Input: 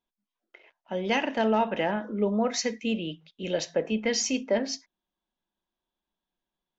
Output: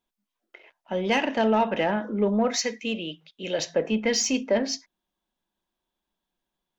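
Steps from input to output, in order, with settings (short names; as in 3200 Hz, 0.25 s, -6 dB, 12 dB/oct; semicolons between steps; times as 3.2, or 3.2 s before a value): 2.56–3.59 low shelf 300 Hz -9.5 dB; in parallel at -5 dB: soft clip -24 dBFS, distortion -11 dB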